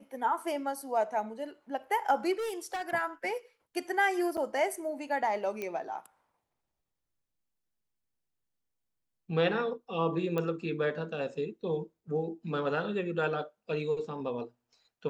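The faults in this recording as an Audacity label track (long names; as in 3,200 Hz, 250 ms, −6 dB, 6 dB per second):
2.320000	2.910000	clipping −31 dBFS
4.370000	4.380000	drop-out 6.8 ms
5.620000	5.620000	click −22 dBFS
10.380000	10.380000	click −20 dBFS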